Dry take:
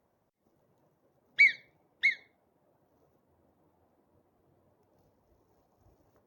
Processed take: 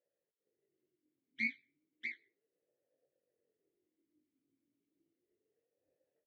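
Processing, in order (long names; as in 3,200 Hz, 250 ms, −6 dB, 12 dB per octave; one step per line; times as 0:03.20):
stylus tracing distortion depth 0.072 ms
parametric band 780 Hz −6.5 dB 2.2 octaves
comb filter 6.7 ms, depth 32%
in parallel at +1.5 dB: downward compressor, threshold −32 dBFS, peak gain reduction 14.5 dB
on the sum: amplitude modulation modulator 230 Hz, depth 80%
pitch vibrato 8.3 Hz 91 cents
chorus effect 0.42 Hz, delay 17.5 ms, depth 5.2 ms
formant filter swept between two vowels e-i 0.33 Hz
level −1.5 dB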